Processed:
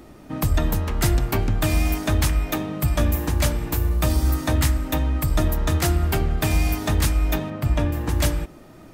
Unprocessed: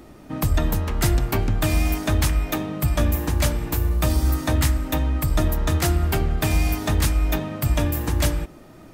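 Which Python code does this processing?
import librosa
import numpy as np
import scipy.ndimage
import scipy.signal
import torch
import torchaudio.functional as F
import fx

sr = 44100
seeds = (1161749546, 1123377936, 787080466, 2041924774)

y = fx.lowpass(x, sr, hz=2500.0, slope=6, at=(7.5, 8.09))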